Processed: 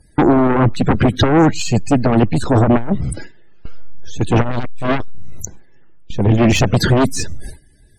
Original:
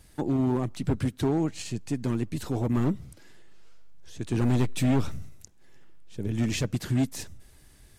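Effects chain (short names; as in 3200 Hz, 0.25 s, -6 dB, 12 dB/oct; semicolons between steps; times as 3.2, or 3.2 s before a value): gate with hold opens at -40 dBFS; in parallel at +2 dB: limiter -27 dBFS, peak gain reduction 10 dB; on the sum: loudest bins only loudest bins 64; sine folder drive 7 dB, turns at -14 dBFS; core saturation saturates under 34 Hz; gain +8 dB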